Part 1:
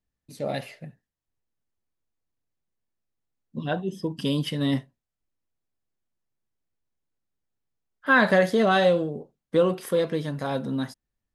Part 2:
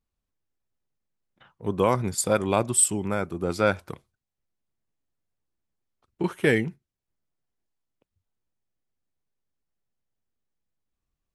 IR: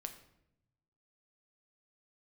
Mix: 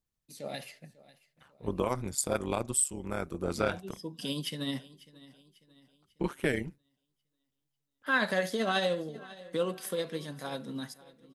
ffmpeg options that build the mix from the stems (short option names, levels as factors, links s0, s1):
-filter_complex "[0:a]highpass=f=130:w=0.5412,highpass=f=130:w=1.3066,tremolo=f=13:d=0.36,highshelf=f=2700:g=12,volume=0.316,asplit=3[s0][s1][s2];[s1]volume=0.188[s3];[s2]volume=0.112[s4];[1:a]tremolo=f=140:d=0.75,adynamicequalizer=threshold=0.00708:dfrequency=4200:dqfactor=0.7:tfrequency=4200:tqfactor=0.7:attack=5:release=100:ratio=0.375:range=3:mode=boostabove:tftype=highshelf,volume=0.794[s5];[2:a]atrim=start_sample=2205[s6];[s3][s6]afir=irnorm=-1:irlink=0[s7];[s4]aecho=0:1:545|1090|1635|2180|2725|3270:1|0.43|0.185|0.0795|0.0342|0.0147[s8];[s0][s5][s7][s8]amix=inputs=4:normalize=0,alimiter=limit=0.168:level=0:latency=1:release=484"